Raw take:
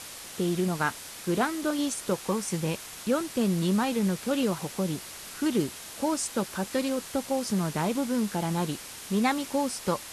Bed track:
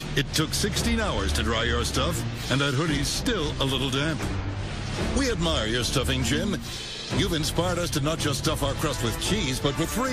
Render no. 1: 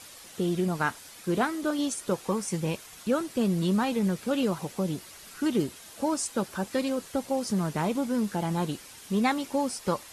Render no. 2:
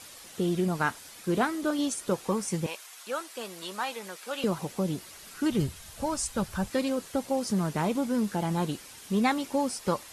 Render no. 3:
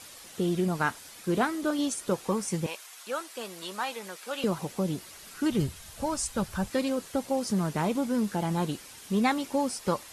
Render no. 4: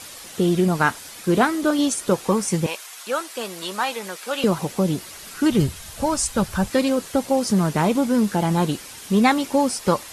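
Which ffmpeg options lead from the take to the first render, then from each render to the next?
ffmpeg -i in.wav -af "afftdn=noise_reduction=8:noise_floor=-43" out.wav
ffmpeg -i in.wav -filter_complex "[0:a]asettb=1/sr,asplit=3[link_01][link_02][link_03];[link_01]atrim=end=2.664[link_04];[link_02]atrim=start=2.66:end=4.44,asetpts=PTS-STARTPTS,afade=type=in:duration=0.004:curve=qsin,afade=type=out:start_time=1.776:duration=0.004:curve=qsin,highpass=740[link_05];[link_03]atrim=start=4.436[link_06];[link_04][link_05]acrossfade=duration=0.004:curve1=hsin:curve2=qsin[link_07];[link_07][link_06]acrossfade=duration=0.004:curve1=qsin:curve2=hsin,asplit=3[link_08][link_09][link_10];[link_08]afade=type=out:start_time=5.5:duration=0.02[link_11];[link_09]asubboost=boost=12:cutoff=87,afade=type=in:start_time=5.5:duration=0.02,afade=type=out:start_time=6.69:duration=0.02[link_12];[link_10]afade=type=in:start_time=6.69:duration=0.02[link_13];[link_11][link_12][link_13]amix=inputs=3:normalize=0" out.wav
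ffmpeg -i in.wav -af anull out.wav
ffmpeg -i in.wav -af "volume=8.5dB" out.wav

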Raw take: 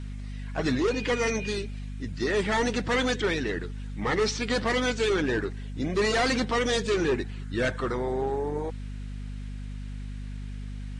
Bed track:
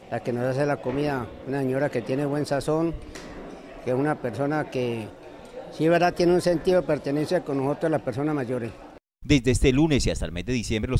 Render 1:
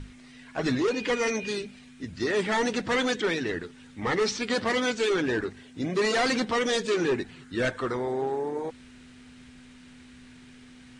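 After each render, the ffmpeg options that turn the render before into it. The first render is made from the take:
ffmpeg -i in.wav -af "bandreject=frequency=50:width_type=h:width=6,bandreject=frequency=100:width_type=h:width=6,bandreject=frequency=150:width_type=h:width=6,bandreject=frequency=200:width_type=h:width=6" out.wav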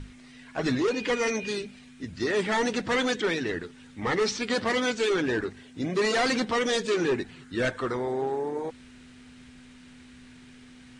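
ffmpeg -i in.wav -af anull out.wav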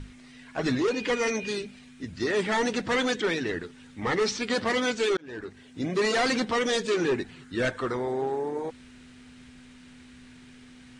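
ffmpeg -i in.wav -filter_complex "[0:a]asplit=2[link_01][link_02];[link_01]atrim=end=5.17,asetpts=PTS-STARTPTS,afade=type=out:start_time=5.166:duration=0.004:curve=hsin[link_03];[link_02]atrim=start=5.17,asetpts=PTS-STARTPTS,afade=type=in:duration=0.62[link_04];[link_03][link_04]concat=n=2:v=0:a=1" out.wav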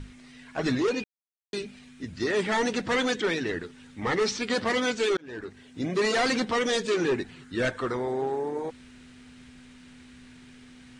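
ffmpeg -i in.wav -filter_complex "[0:a]asplit=3[link_01][link_02][link_03];[link_01]atrim=end=1.04,asetpts=PTS-STARTPTS,afade=type=out:start_time=1.036:duration=0.004:curve=hsin[link_04];[link_02]atrim=start=1.04:end=1.53,asetpts=PTS-STARTPTS,volume=0[link_05];[link_03]atrim=start=1.53,asetpts=PTS-STARTPTS,afade=type=in:duration=0.004:curve=hsin[link_06];[link_04][link_05][link_06]concat=n=3:v=0:a=1" out.wav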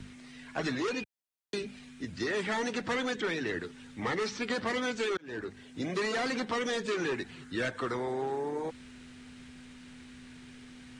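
ffmpeg -i in.wav -filter_complex "[0:a]acrossover=split=86|360|890|2200[link_01][link_02][link_03][link_04][link_05];[link_01]acompressor=threshold=-59dB:ratio=4[link_06];[link_02]acompressor=threshold=-37dB:ratio=4[link_07];[link_03]acompressor=threshold=-38dB:ratio=4[link_08];[link_04]acompressor=threshold=-36dB:ratio=4[link_09];[link_05]acompressor=threshold=-41dB:ratio=4[link_10];[link_06][link_07][link_08][link_09][link_10]amix=inputs=5:normalize=0" out.wav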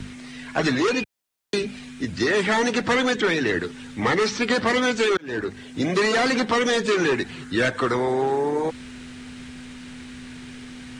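ffmpeg -i in.wav -af "volume=11dB" out.wav

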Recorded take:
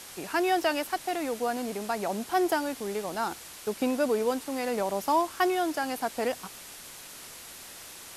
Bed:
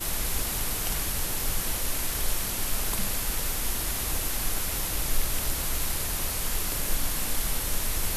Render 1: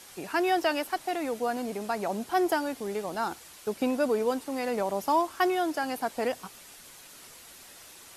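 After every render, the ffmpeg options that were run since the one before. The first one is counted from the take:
ffmpeg -i in.wav -af "afftdn=noise_reduction=6:noise_floor=-46" out.wav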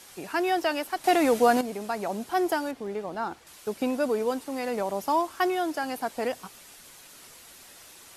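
ffmpeg -i in.wav -filter_complex "[0:a]asettb=1/sr,asplit=3[link_01][link_02][link_03];[link_01]atrim=end=2.714[link_04];[link_02]atrim=start=2.71:end=3.47,asetpts=PTS-STARTPTS,afade=type=in:duration=0.004:curve=qsin,afade=type=out:start_time=0.756:duration=0.004:curve=qsin,lowpass=frequency=2200:poles=1[link_05];[link_03]atrim=start=3.466[link_06];[link_04][link_05]acrossfade=duration=0.004:curve1=hsin:curve2=qsin[link_07];[link_07][link_06]acrossfade=duration=0.004:curve1=qsin:curve2=hsin,asplit=3[link_08][link_09][link_10];[link_08]atrim=end=1.042[link_11];[link_09]atrim=start=1.038:end=1.612,asetpts=PTS-STARTPTS,volume=9.5dB[link_12];[link_10]atrim=start=1.608[link_13];[link_11][link_12]acrossfade=duration=0.004:curve1=hsin:curve2=hsin[link_14];[link_14][link_13]acrossfade=duration=0.004:curve1=hsin:curve2=hsin" out.wav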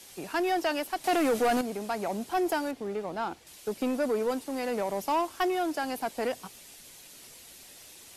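ffmpeg -i in.wav -filter_complex "[0:a]acrossover=split=120|1500|2100[link_01][link_02][link_03][link_04];[link_02]adynamicsmooth=sensitivity=8:basefreq=930[link_05];[link_01][link_05][link_03][link_04]amix=inputs=4:normalize=0,asoftclip=type=tanh:threshold=-20.5dB" out.wav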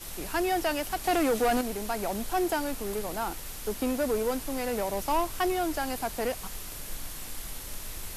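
ffmpeg -i in.wav -i bed.wav -filter_complex "[1:a]volume=-11dB[link_01];[0:a][link_01]amix=inputs=2:normalize=0" out.wav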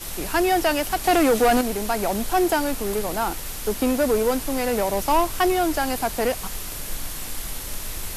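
ffmpeg -i in.wav -af "volume=7.5dB" out.wav

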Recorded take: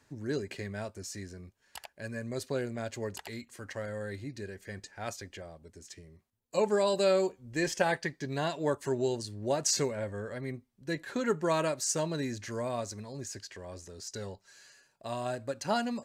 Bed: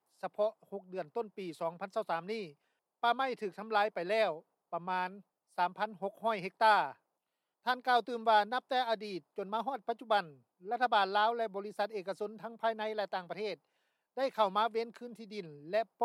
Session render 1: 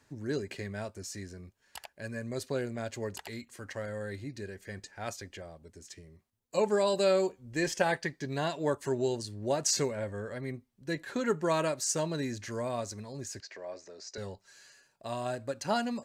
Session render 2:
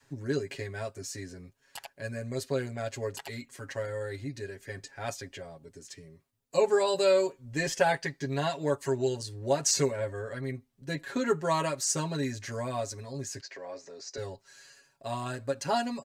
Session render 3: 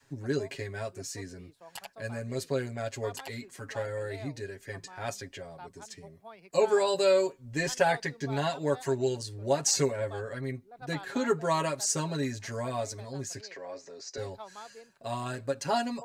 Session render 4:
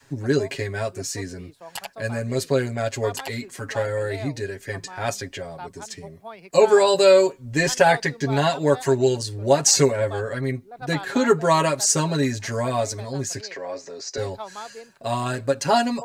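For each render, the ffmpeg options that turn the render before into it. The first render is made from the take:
ffmpeg -i in.wav -filter_complex "[0:a]asettb=1/sr,asplit=3[link_01][link_02][link_03];[link_01]atrim=end=13.404[link_04];[link_02]atrim=start=13.4:end=14.18,asetpts=PTS-STARTPTS,afade=type=in:duration=0.004:curve=qsin,afade=type=out:start_time=0.776:duration=0.004:curve=qsin,highpass=310,equalizer=frequency=630:width_type=q:width=4:gain=7,equalizer=frequency=2200:width_type=q:width=4:gain=4,equalizer=frequency=3200:width_type=q:width=4:gain=-8,lowpass=frequency=6000:width=0.5412,lowpass=frequency=6000:width=1.3066[link_05];[link_03]atrim=start=14.176[link_06];[link_04][link_05]acrossfade=duration=0.004:curve1=hsin:curve2=qsin[link_07];[link_07][link_06]acrossfade=duration=0.004:curve1=qsin:curve2=hsin" out.wav
ffmpeg -i in.wav -af "adynamicequalizer=threshold=0.00708:dfrequency=240:dqfactor=0.87:tfrequency=240:tqfactor=0.87:attack=5:release=100:ratio=0.375:range=2.5:mode=cutabove:tftype=bell,aecho=1:1:7.3:0.84" out.wav
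ffmpeg -i in.wav -i bed.wav -filter_complex "[1:a]volume=-15.5dB[link_01];[0:a][link_01]amix=inputs=2:normalize=0" out.wav
ffmpeg -i in.wav -af "volume=9.5dB,alimiter=limit=-3dB:level=0:latency=1" out.wav

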